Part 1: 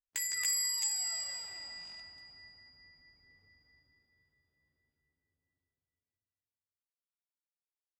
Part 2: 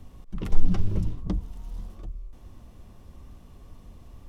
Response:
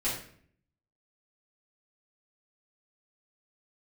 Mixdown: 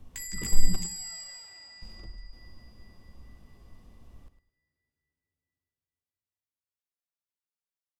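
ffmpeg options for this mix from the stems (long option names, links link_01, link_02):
-filter_complex "[0:a]volume=-4dB[link_01];[1:a]volume=-7dB,asplit=3[link_02][link_03][link_04];[link_02]atrim=end=0.76,asetpts=PTS-STARTPTS,afade=type=out:start_time=0.756:duration=0.004:curve=hsin[link_05];[link_03]atrim=start=0.76:end=1.82,asetpts=PTS-STARTPTS,volume=0[link_06];[link_04]atrim=start=1.82,asetpts=PTS-STARTPTS,afade=type=in:duration=0.004:curve=hsin[link_07];[link_05][link_06][link_07]concat=n=3:v=0:a=1,asplit=3[link_08][link_09][link_10];[link_09]volume=-17dB[link_11];[link_10]volume=-11dB[link_12];[2:a]atrim=start_sample=2205[link_13];[link_11][link_13]afir=irnorm=-1:irlink=0[link_14];[link_12]aecho=0:1:105|210|315:1|0.21|0.0441[link_15];[link_01][link_08][link_14][link_15]amix=inputs=4:normalize=0"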